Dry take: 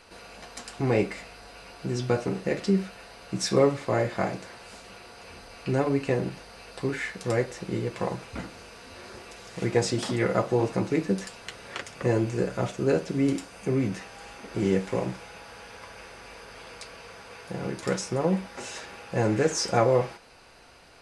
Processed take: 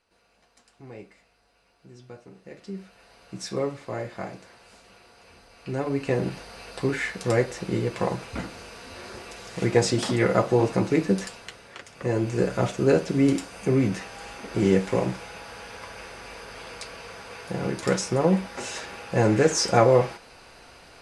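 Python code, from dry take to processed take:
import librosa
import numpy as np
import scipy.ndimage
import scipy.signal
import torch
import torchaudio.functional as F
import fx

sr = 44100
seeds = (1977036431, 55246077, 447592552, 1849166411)

y = fx.gain(x, sr, db=fx.line((2.31, -19.0), (3.14, -7.0), (5.55, -7.0), (6.3, 3.5), (11.25, 3.5), (11.76, -7.0), (12.45, 4.0)))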